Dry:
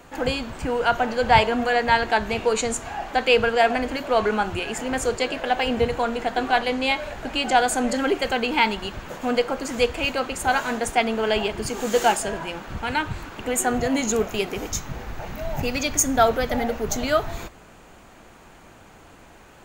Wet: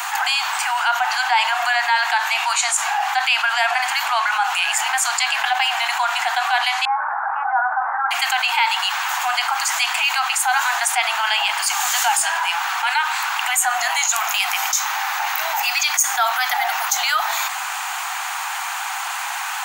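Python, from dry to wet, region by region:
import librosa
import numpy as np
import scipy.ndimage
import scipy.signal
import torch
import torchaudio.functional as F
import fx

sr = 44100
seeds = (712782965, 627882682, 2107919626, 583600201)

y = fx.chain(x, sr, fx.steep_lowpass(hz=1500.0, slope=48),
    fx.notch(hz=730.0, q=18.0), at=(6.85, 8.11))
y = scipy.signal.sosfilt(scipy.signal.butter(16, 750.0, 'highpass', fs=sr, output='sos'), y)
y = fx.high_shelf(y, sr, hz=8000.0, db=5.5)
y = fx.env_flatten(y, sr, amount_pct=70)
y = y * librosa.db_to_amplitude(-2.0)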